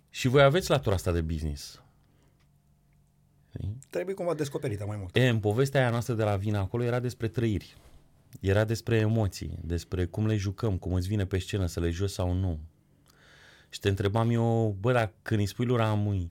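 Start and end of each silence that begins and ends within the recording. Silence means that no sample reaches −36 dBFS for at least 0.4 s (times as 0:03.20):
0:01.69–0:03.55
0:07.63–0:08.33
0:12.59–0:13.74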